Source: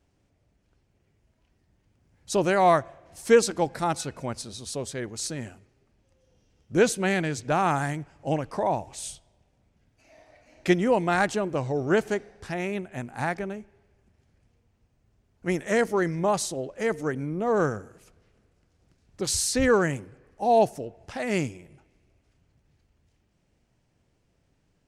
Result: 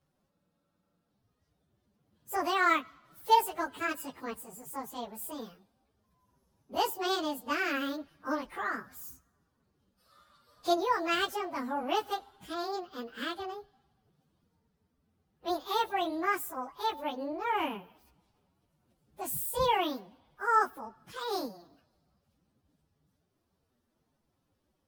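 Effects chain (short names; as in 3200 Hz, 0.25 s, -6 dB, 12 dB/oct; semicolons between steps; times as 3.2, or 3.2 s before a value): pitch shift by moving bins +11.5 st; spectral freeze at 0.33, 0.77 s; gain -3.5 dB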